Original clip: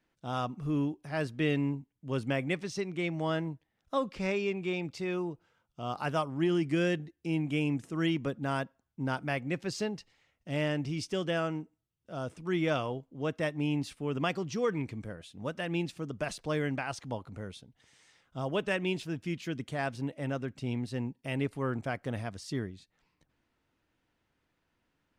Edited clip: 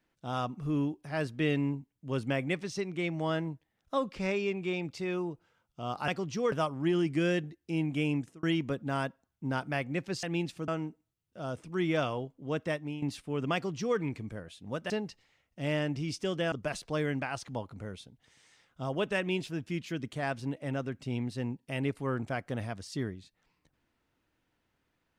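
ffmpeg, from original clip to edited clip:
-filter_complex "[0:a]asplit=9[a][b][c][d][e][f][g][h][i];[a]atrim=end=6.082[j];[b]atrim=start=14.268:end=14.712[k];[c]atrim=start=6.078:end=7.99,asetpts=PTS-STARTPTS,afade=t=out:st=1.642:d=0.27[l];[d]atrim=start=7.99:end=9.792,asetpts=PTS-STARTPTS,afade=t=in:d=0.004:c=hsin[m];[e]atrim=start=15.628:end=16.082[n];[f]atrim=start=11.408:end=13.75,asetpts=PTS-STARTPTS,afade=t=out:st=1.992:d=0.35:silence=0.237137[o];[g]atrim=start=13.75:end=15.632,asetpts=PTS-STARTPTS,afade=t=in:d=0.004:c=hsin:silence=0.237137[p];[h]atrim=start=9.788:end=11.412[q];[i]atrim=start=16.078[r];[j][k]acrossfade=d=0.004:c1=hsin:c2=hsin[s];[l][m]concat=n=2:v=0:a=1[t];[s][t]acrossfade=d=0.004:c1=hsin:c2=hsin[u];[u][n]acrossfade=d=0.004:c1=hsin:c2=hsin[v];[o][p]concat=n=2:v=0:a=1[w];[v][w]acrossfade=d=0.004:c1=hsin:c2=hsin[x];[x][q]acrossfade=d=0.004:c1=hsin:c2=hsin[y];[y][r]acrossfade=d=0.004:c1=hsin:c2=hsin"

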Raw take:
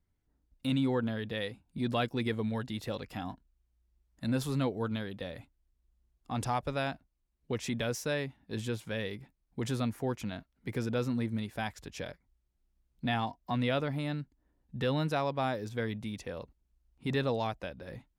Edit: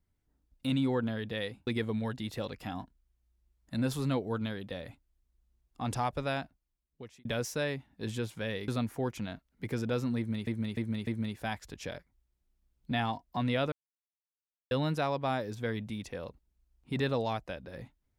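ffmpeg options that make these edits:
-filter_complex "[0:a]asplit=9[a][b][c][d][e][f][g][h][i];[a]atrim=end=1.672[j];[b]atrim=start=2.168:end=7.75,asetpts=PTS-STARTPTS,afade=t=out:st=4.662:d=0.92[k];[c]atrim=start=7.75:end=9.182,asetpts=PTS-STARTPTS,afade=t=in:d=0.004:c=hsin[l];[d]atrim=start=9.718:end=11.512[m];[e]atrim=start=11.208:end=11.512[n];[f]atrim=start=11.208:end=11.512[o];[g]atrim=start=11.208:end=13.86,asetpts=PTS-STARTPTS,afade=t=out:st=2.648:d=0.004:c=hsin[p];[h]atrim=start=13.86:end=14.85,asetpts=PTS-STARTPTS,volume=0[q];[i]atrim=start=14.85,asetpts=PTS-STARTPTS,afade=t=in:d=0.004:c=hsin[r];[k][l]concat=n=2:v=0:a=1[s];[j][s]acrossfade=d=0.004:c1=hsin:c2=hsin[t];[t][m]acrossfade=d=0.004:c1=hsin:c2=hsin[u];[u][n]acrossfade=d=0.004:c1=hsin:c2=hsin[v];[v][o]acrossfade=d=0.004:c1=hsin:c2=hsin[w];[p][q][r]concat=n=3:v=0:a=1[x];[w][x]acrossfade=d=0.004:c1=hsin:c2=hsin"

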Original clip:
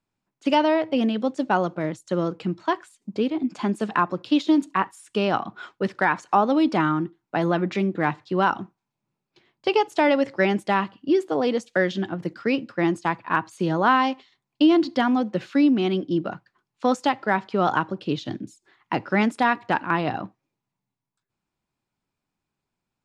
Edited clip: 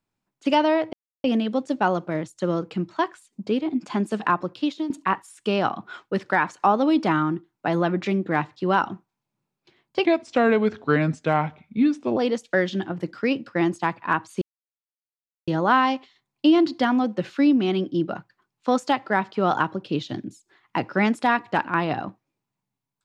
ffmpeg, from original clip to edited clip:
-filter_complex "[0:a]asplit=6[a][b][c][d][e][f];[a]atrim=end=0.93,asetpts=PTS-STARTPTS,afade=t=out:st=0.926:d=0.004:c=hsin,apad=pad_dur=0.31[g];[b]atrim=start=0.93:end=4.59,asetpts=PTS-STARTPTS,afade=t=in:d=0.004:c=hsin,afade=t=out:st=3.16:d=0.5:silence=0.237137[h];[c]atrim=start=4.59:end=9.744,asetpts=PTS-STARTPTS,afade=t=in:d=0.004:c=hsin:silence=0.237137[i];[d]atrim=start=9.74:end=11.39,asetpts=PTS-STARTPTS,asetrate=34398,aresample=44100,atrim=end_sample=93288,asetpts=PTS-STARTPTS[j];[e]atrim=start=11.386:end=13.64,asetpts=PTS-STARTPTS,afade=t=out:st=2.25:d=0.004:c=hsin,apad=pad_dur=1.06[k];[f]atrim=start=13.64,asetpts=PTS-STARTPTS,afade=t=in:d=0.004:c=hsin[l];[g][h][i]concat=n=3:v=0:a=1[m];[m][j]acrossfade=d=0.004:c1=hsin:c2=hsin[n];[k][l]concat=n=2:v=0:a=1[o];[n][o]acrossfade=d=0.004:c1=hsin:c2=hsin"

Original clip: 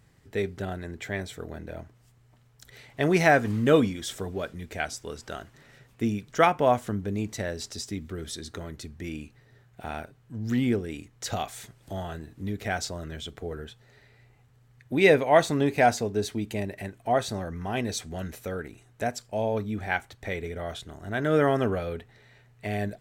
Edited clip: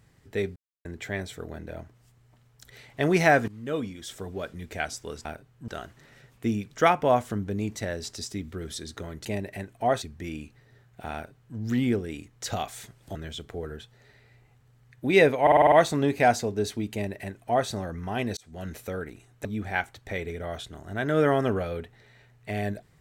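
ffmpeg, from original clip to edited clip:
-filter_complex "[0:a]asplit=17[a][b][c][d][e][f][g][h][i][j][k][l][m][n][o][p][q];[a]atrim=end=0.56,asetpts=PTS-STARTPTS,afade=t=out:st=0.556:d=0.004:c=hsin[r];[b]atrim=start=0.56:end=0.85,asetpts=PTS-STARTPTS,volume=0[s];[c]atrim=start=0.85:end=3.48,asetpts=PTS-STARTPTS,afade=t=in:d=0.004:c=hsin,afade=t=out:st=2.626:d=0.004:c=hsin:silence=0.1[t];[d]atrim=start=3.48:end=5.252,asetpts=PTS-STARTPTS,afade=t=in:d=1.19:silence=0.1[u];[e]atrim=start=9.938:end=10.372[v];[f]atrim=start=5.248:end=8.822[w];[g]atrim=start=16.498:end=17.272[x];[h]atrim=start=8.818:end=11.952[y];[i]atrim=start=13.028:end=15.352[z];[j]atrim=start=15.298:end=15.352[aa];[k]atrim=start=15.298:end=15.352[ab];[l]atrim=start=15.298:end=15.352[ac];[m]atrim=start=15.298:end=15.352[ad];[n]atrim=start=15.298:end=15.352[ae];[o]atrim=start=15.298:end=17.95,asetpts=PTS-STARTPTS,afade=t=out:st=2.648:d=0.004:c=hsin[af];[p]atrim=start=17.95:end=19.032,asetpts=PTS-STARTPTS,afade=t=in:d=0.34[ag];[q]atrim=start=19.608[ah];[r][s][t][u]concat=n=4:v=0:a=1[ai];[ai][v]acrossfade=d=0.004:c1=hsin:c2=hsin[aj];[aj][w]acrossfade=d=0.004:c1=hsin:c2=hsin[ak];[ak][x]acrossfade=d=0.004:c1=hsin:c2=hsin[al];[al][y]acrossfade=d=0.004:c1=hsin:c2=hsin[am];[am][z]acrossfade=d=0.004:c1=hsin:c2=hsin[an];[an][aa]acrossfade=d=0.004:c1=hsin:c2=hsin[ao];[ao][ab]acrossfade=d=0.004:c1=hsin:c2=hsin[ap];[ap][ac]acrossfade=d=0.004:c1=hsin:c2=hsin[aq];[aq][ad]acrossfade=d=0.004:c1=hsin:c2=hsin[ar];[ar][ae]acrossfade=d=0.004:c1=hsin:c2=hsin[as];[af][ag]concat=n=2:v=0:a=1[at];[as][at]acrossfade=d=0.004:c1=hsin:c2=hsin[au];[au][ah]acrossfade=d=0.004:c1=hsin:c2=hsin"

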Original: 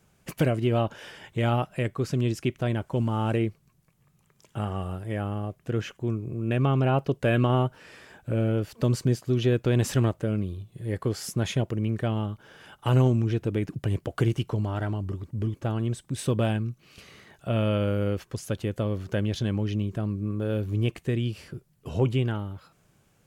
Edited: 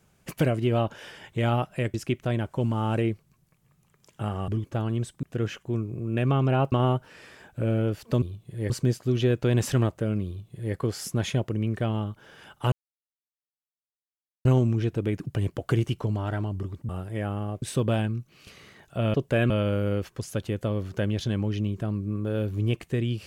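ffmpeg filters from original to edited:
-filter_complex "[0:a]asplit=12[a][b][c][d][e][f][g][h][i][j][k][l];[a]atrim=end=1.942[m];[b]atrim=start=2.298:end=4.842[n];[c]atrim=start=15.378:end=16.132[o];[d]atrim=start=5.568:end=7.062[p];[e]atrim=start=7.418:end=8.922[q];[f]atrim=start=10.488:end=10.972[r];[g]atrim=start=8.918:end=12.94,asetpts=PTS-STARTPTS,afade=t=out:st=4.018:d=0.004:c=hsin,apad=pad_dur=1.73[s];[h]atrim=start=12.94:end=15.382,asetpts=PTS-STARTPTS,afade=t=in:d=0.004:c=hsin[t];[i]atrim=start=4.838:end=5.572[u];[j]atrim=start=16.128:end=17.652[v];[k]atrim=start=7.058:end=7.422[w];[l]atrim=start=17.648[x];[m][n]acrossfade=d=0.004:c1=hsin:c2=hsin[y];[y][o]acrossfade=d=0.004:c1=hsin:c2=hsin[z];[z][p]acrossfade=d=0.004:c1=hsin:c2=hsin[aa];[aa][q]acrossfade=d=0.004:c1=hsin:c2=hsin[ab];[ab][r]acrossfade=d=0.004:c1=hsin:c2=hsin[ac];[s][t]concat=n=2:v=0:a=1[ad];[ac][ad]acrossfade=d=0.004:c1=hsin:c2=hsin[ae];[ae][u]acrossfade=d=0.004:c1=hsin:c2=hsin[af];[af][v]acrossfade=d=0.004:c1=hsin:c2=hsin[ag];[ag][w]acrossfade=d=0.004:c1=hsin:c2=hsin[ah];[ah][x]acrossfade=d=0.004:c1=hsin:c2=hsin"

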